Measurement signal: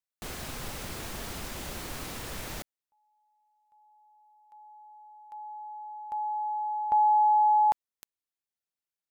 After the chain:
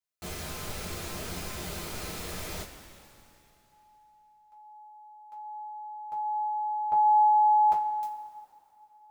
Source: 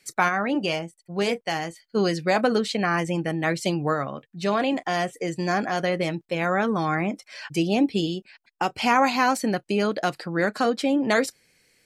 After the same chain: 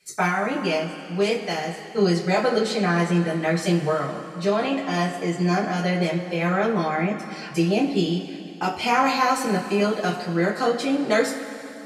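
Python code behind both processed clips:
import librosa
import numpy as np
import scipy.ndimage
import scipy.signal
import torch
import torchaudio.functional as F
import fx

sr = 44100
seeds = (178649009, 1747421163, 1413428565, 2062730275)

y = fx.rev_double_slope(x, sr, seeds[0], early_s=0.22, late_s=2.9, knee_db=-18, drr_db=-6.5)
y = F.gain(torch.from_numpy(y), -6.5).numpy()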